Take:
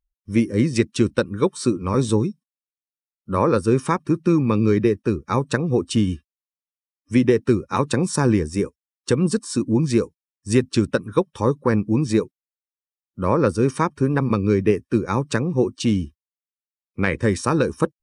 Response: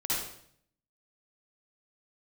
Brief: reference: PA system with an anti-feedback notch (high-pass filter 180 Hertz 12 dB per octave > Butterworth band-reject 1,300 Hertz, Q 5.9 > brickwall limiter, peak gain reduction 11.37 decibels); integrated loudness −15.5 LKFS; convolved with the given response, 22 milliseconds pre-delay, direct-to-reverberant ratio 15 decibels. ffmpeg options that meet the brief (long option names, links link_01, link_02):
-filter_complex "[0:a]asplit=2[link_01][link_02];[1:a]atrim=start_sample=2205,adelay=22[link_03];[link_02][link_03]afir=irnorm=-1:irlink=0,volume=-22dB[link_04];[link_01][link_04]amix=inputs=2:normalize=0,highpass=180,asuperstop=centerf=1300:order=8:qfactor=5.9,volume=12dB,alimiter=limit=-4.5dB:level=0:latency=1"